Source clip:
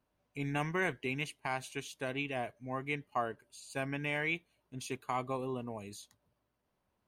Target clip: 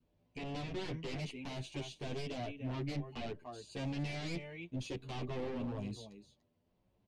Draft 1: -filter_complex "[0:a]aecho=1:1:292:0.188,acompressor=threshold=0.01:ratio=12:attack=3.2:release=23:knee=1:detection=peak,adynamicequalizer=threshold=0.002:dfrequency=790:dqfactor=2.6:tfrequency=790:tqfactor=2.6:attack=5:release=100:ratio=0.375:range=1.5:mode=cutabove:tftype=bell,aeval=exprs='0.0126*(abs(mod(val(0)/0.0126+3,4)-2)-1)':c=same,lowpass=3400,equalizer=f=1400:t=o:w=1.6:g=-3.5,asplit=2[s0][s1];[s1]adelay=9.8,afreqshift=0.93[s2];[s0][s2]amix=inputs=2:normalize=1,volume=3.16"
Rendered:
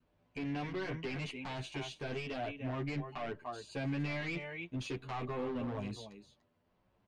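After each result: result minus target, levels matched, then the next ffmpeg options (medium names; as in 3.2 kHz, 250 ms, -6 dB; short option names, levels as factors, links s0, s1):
compression: peak gain reduction +5.5 dB; 1 kHz band +2.5 dB
-filter_complex "[0:a]aecho=1:1:292:0.188,acompressor=threshold=0.02:ratio=12:attack=3.2:release=23:knee=1:detection=peak,adynamicequalizer=threshold=0.002:dfrequency=790:dqfactor=2.6:tfrequency=790:tqfactor=2.6:attack=5:release=100:ratio=0.375:range=1.5:mode=cutabove:tftype=bell,aeval=exprs='0.0126*(abs(mod(val(0)/0.0126+3,4)-2)-1)':c=same,lowpass=3400,equalizer=f=1400:t=o:w=1.6:g=-3.5,asplit=2[s0][s1];[s1]adelay=9.8,afreqshift=0.93[s2];[s0][s2]amix=inputs=2:normalize=1,volume=3.16"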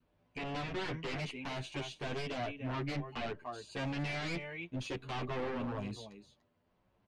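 1 kHz band +4.0 dB
-filter_complex "[0:a]aecho=1:1:292:0.188,acompressor=threshold=0.02:ratio=12:attack=3.2:release=23:knee=1:detection=peak,adynamicequalizer=threshold=0.002:dfrequency=790:dqfactor=2.6:tfrequency=790:tqfactor=2.6:attack=5:release=100:ratio=0.375:range=1.5:mode=cutabove:tftype=bell,aeval=exprs='0.0126*(abs(mod(val(0)/0.0126+3,4)-2)-1)':c=same,lowpass=3400,equalizer=f=1400:t=o:w=1.6:g=-14.5,asplit=2[s0][s1];[s1]adelay=9.8,afreqshift=0.93[s2];[s0][s2]amix=inputs=2:normalize=1,volume=3.16"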